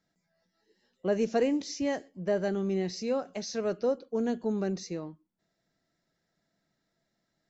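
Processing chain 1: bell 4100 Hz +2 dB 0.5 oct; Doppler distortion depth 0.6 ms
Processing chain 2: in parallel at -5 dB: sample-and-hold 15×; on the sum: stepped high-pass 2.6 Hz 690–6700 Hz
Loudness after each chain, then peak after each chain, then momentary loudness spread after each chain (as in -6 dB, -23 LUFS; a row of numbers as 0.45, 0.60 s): -31.5, -33.5 LUFS; -16.5, -15.5 dBFS; 8, 13 LU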